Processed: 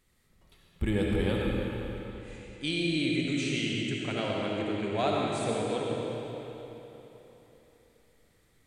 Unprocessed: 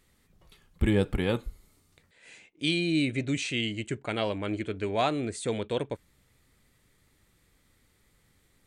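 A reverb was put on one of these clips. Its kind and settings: algorithmic reverb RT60 3.6 s, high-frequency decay 0.85×, pre-delay 30 ms, DRR -3 dB; trim -5 dB

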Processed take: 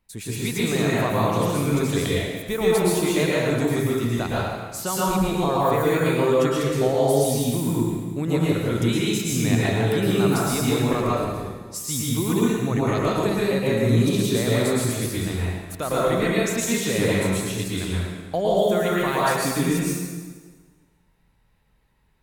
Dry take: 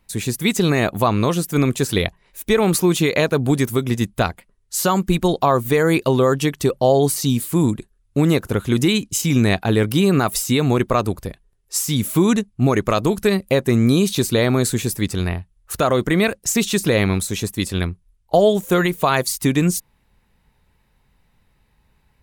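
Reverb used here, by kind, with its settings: plate-style reverb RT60 1.5 s, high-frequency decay 0.85×, pre-delay 100 ms, DRR -7 dB; trim -11 dB

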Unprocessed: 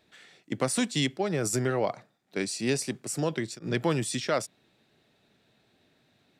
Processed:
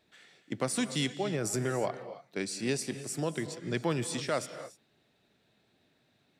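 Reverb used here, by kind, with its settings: gated-style reverb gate 320 ms rising, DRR 11.5 dB; trim -4 dB

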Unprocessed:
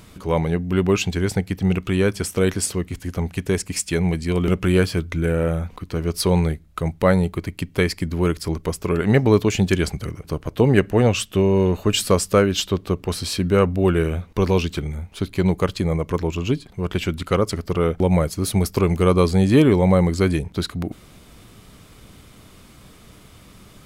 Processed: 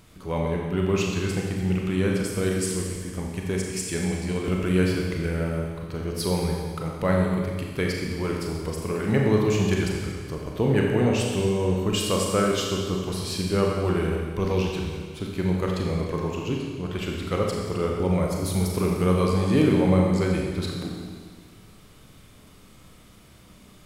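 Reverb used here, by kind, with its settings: Schroeder reverb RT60 1.7 s, combs from 29 ms, DRR -1 dB; trim -8 dB

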